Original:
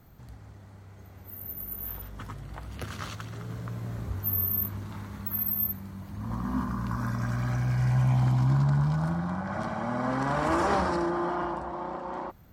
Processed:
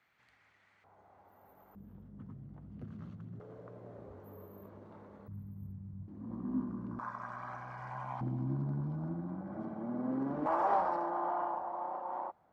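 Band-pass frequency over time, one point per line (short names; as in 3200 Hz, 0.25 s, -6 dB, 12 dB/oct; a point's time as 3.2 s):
band-pass, Q 2.4
2200 Hz
from 0.84 s 810 Hz
from 1.75 s 190 Hz
from 3.4 s 510 Hz
from 5.28 s 120 Hz
from 6.08 s 310 Hz
from 6.99 s 990 Hz
from 8.21 s 310 Hz
from 10.46 s 790 Hz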